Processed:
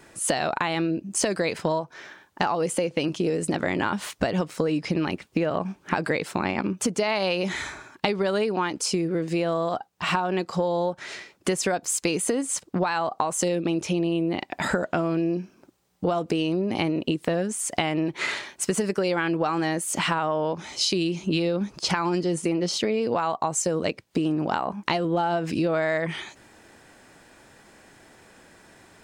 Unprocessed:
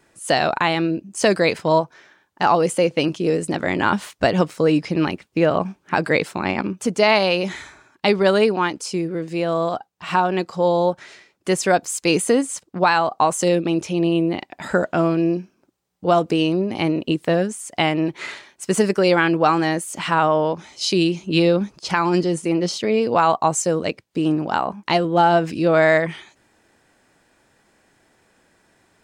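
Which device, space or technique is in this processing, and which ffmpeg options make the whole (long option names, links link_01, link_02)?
serial compression, leveller first: -af "acompressor=threshold=-18dB:ratio=3,acompressor=threshold=-31dB:ratio=4,volume=7.5dB"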